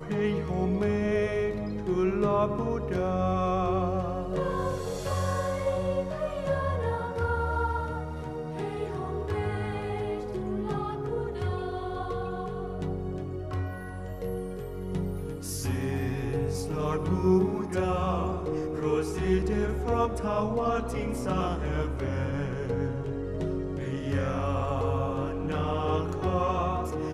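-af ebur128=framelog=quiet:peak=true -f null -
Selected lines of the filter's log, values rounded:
Integrated loudness:
  I:         -29.9 LUFS
  Threshold: -39.9 LUFS
Loudness range:
  LRA:         5.7 LU
  Threshold: -50.1 LUFS
  LRA low:   -33.5 LUFS
  LRA high:  -27.9 LUFS
True peak:
  Peak:      -12.2 dBFS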